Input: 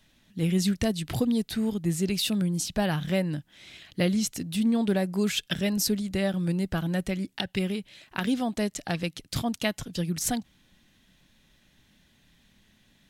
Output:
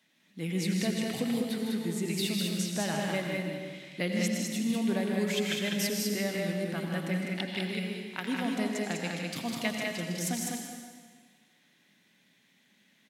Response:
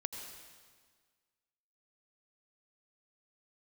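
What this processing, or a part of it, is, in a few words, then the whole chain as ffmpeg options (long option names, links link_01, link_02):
stadium PA: -filter_complex "[0:a]highpass=frequency=170:width=0.5412,highpass=frequency=170:width=1.3066,equalizer=frequency=2100:width_type=o:width=0.38:gain=6.5,aecho=1:1:157.4|201.2:0.447|0.708[link_01];[1:a]atrim=start_sample=2205[link_02];[link_01][link_02]afir=irnorm=-1:irlink=0,volume=-5dB"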